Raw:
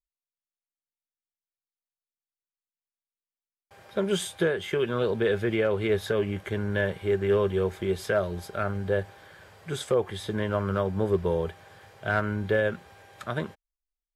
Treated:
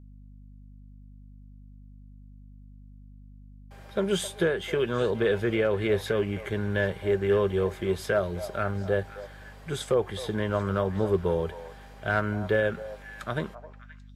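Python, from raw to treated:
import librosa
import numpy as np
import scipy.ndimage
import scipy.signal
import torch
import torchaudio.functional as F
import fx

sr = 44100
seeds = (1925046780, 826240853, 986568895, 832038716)

y = fx.add_hum(x, sr, base_hz=50, snr_db=19)
y = fx.echo_stepped(y, sr, ms=263, hz=760.0, octaves=1.4, feedback_pct=70, wet_db=-10)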